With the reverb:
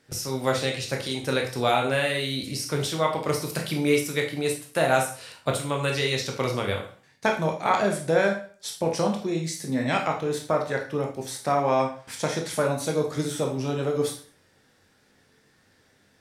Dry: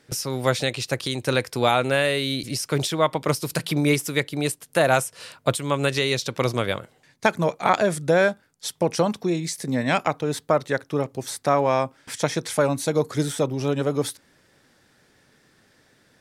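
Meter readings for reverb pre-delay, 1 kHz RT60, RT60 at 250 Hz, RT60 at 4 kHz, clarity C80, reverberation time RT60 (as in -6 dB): 8 ms, 0.45 s, 0.45 s, 0.40 s, 12.5 dB, 0.45 s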